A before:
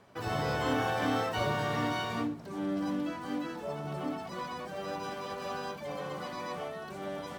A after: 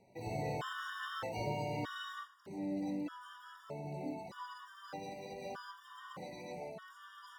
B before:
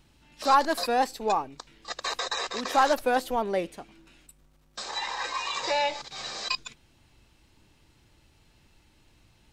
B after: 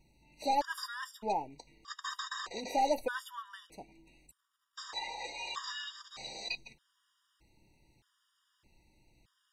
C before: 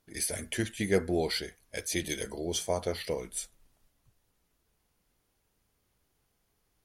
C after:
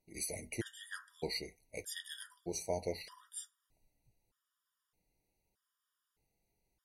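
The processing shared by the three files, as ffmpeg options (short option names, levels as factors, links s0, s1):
-af "flanger=delay=5.3:depth=1.4:regen=-65:speed=0.9:shape=triangular,afftfilt=real='re*gt(sin(2*PI*0.81*pts/sr)*(1-2*mod(floor(b*sr/1024/950),2)),0)':imag='im*gt(sin(2*PI*0.81*pts/sr)*(1-2*mod(floor(b*sr/1024/950),2)),0)':win_size=1024:overlap=0.75,volume=0.841"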